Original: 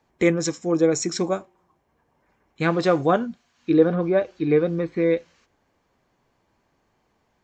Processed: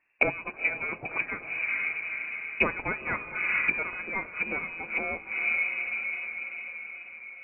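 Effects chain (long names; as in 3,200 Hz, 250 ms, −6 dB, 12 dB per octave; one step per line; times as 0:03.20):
leveller curve on the samples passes 2
on a send: feedback delay with all-pass diffusion 462 ms, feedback 59%, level −12 dB
on the sum: voice inversion scrambler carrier 2,700 Hz
treble cut that deepens with the level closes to 750 Hz, closed at −14 dBFS
level −1.5 dB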